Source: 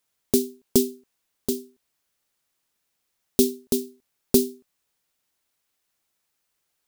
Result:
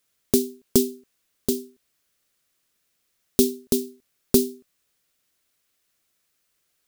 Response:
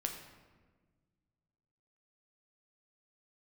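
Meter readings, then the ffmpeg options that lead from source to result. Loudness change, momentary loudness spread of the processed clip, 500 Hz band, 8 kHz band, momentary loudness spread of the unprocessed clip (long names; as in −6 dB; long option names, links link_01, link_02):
+1.0 dB, 9 LU, +0.5 dB, +1.0 dB, 11 LU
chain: -filter_complex "[0:a]equalizer=frequency=870:width_type=o:width=0.42:gain=-8,asplit=2[link_01][link_02];[link_02]acompressor=threshold=-25dB:ratio=6,volume=-1dB[link_03];[link_01][link_03]amix=inputs=2:normalize=0,volume=-1.5dB"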